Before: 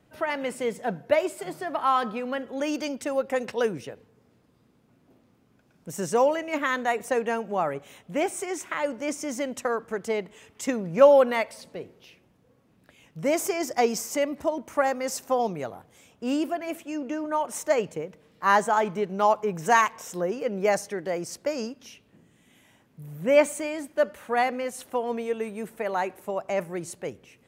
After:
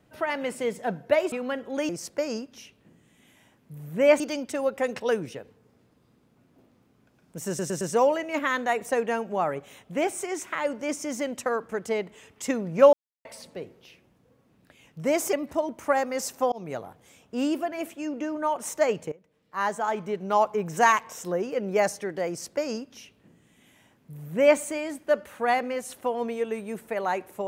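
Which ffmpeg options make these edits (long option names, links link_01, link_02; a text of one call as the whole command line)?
ffmpeg -i in.wav -filter_complex "[0:a]asplit=12[link_01][link_02][link_03][link_04][link_05][link_06][link_07][link_08][link_09][link_10][link_11][link_12];[link_01]atrim=end=1.322[link_13];[link_02]atrim=start=2.148:end=2.722[link_14];[link_03]atrim=start=21.168:end=23.482[link_15];[link_04]atrim=start=2.718:end=6.112[link_16];[link_05]atrim=start=5.998:end=6.112[link_17];[link_06]atrim=start=5.998:end=6.112[link_18];[link_07]atrim=start=5.998:end=11.12,asetpts=PTS-STARTPTS,afade=type=out:start_time=5.118:duration=0.004:curve=hsin[link_19];[link_08]atrim=start=11.12:end=11.44,asetpts=PTS-STARTPTS,volume=0[link_20];[link_09]atrim=start=11.44:end=13.522,asetpts=PTS-STARTPTS,afade=type=in:duration=0.004:curve=hsin[link_21];[link_10]atrim=start=14.218:end=15.41,asetpts=PTS-STARTPTS,afade=type=out:start_time=1.188:duration=0.004:curve=hsin[link_22];[link_11]atrim=start=15.41:end=18.01,asetpts=PTS-STARTPTS,afade=type=in:duration=0.29:curve=qsin,afade=type=out:start_time=2.596:duration=0.004:curve=hsin:silence=0.112202[link_23];[link_12]atrim=start=18.01,asetpts=PTS-STARTPTS,afade=type=in:duration=1.4:silence=0.112202[link_24];[link_13][link_14]acrossfade=duration=0.004:curve1=hsin:curve2=hsin[link_25];[link_25][link_15]acrossfade=duration=0.004:curve1=hsin:curve2=hsin[link_26];[link_26][link_16]acrossfade=duration=0.004:curve1=hsin:curve2=hsin[link_27];[link_27][link_17]acrossfade=duration=0.004:curve1=hsin:curve2=hsin[link_28];[link_28][link_18]acrossfade=duration=0.004:curve1=hsin:curve2=hsin[link_29];[link_19][link_20][link_21]concat=n=3:v=0:a=1[link_30];[link_29][link_30]acrossfade=duration=0.004:curve1=hsin:curve2=hsin[link_31];[link_22][link_23][link_24]concat=n=3:v=0:a=1[link_32];[link_31][link_32]acrossfade=duration=0.004:curve1=hsin:curve2=hsin" out.wav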